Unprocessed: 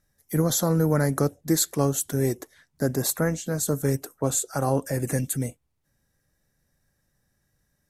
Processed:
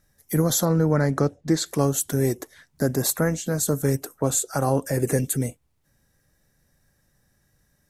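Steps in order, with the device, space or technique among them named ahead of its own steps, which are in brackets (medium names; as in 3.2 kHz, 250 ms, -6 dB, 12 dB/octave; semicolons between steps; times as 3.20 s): 0.65–1.66 s: low-pass 5.1 kHz 12 dB/octave; 4.97–5.41 s: peaking EQ 420 Hz +9 dB 0.44 oct; parallel compression (in parallel at -0.5 dB: compression, threshold -33 dBFS, peak gain reduction 15.5 dB)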